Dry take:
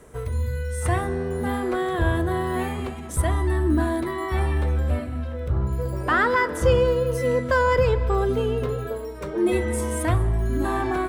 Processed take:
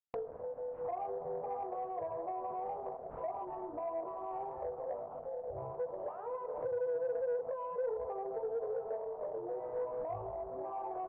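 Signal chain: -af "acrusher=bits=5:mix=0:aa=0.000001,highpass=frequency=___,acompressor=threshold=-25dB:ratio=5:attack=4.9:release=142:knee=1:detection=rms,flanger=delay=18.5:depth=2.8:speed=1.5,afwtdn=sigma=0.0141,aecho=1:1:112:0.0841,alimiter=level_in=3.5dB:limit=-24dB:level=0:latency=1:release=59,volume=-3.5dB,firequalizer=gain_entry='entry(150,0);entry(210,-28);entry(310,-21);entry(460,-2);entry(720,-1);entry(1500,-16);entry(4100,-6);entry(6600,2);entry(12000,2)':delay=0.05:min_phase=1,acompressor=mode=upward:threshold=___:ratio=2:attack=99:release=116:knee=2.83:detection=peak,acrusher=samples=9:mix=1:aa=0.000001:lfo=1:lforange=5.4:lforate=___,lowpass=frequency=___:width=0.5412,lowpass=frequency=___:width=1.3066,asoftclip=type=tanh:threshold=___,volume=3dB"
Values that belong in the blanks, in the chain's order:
470, -43dB, 1.2, 1k, 1k, -30dB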